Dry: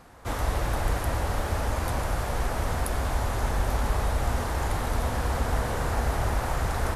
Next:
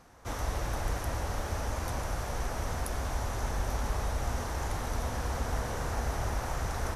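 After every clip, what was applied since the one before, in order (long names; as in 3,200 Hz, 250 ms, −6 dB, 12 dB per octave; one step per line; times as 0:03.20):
parametric band 5,900 Hz +8.5 dB 0.28 octaves
level −6 dB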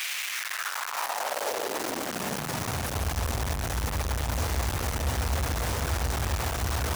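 sign of each sample alone
high-pass filter sweep 2,400 Hz → 69 Hz, 0:00.23–0:03.14
level +2 dB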